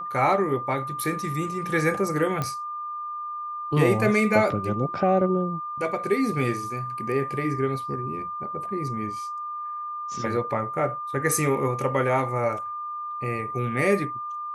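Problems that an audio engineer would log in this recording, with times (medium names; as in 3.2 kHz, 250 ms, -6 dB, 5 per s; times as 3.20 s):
whine 1.2 kHz -30 dBFS
2.42 s: pop -14 dBFS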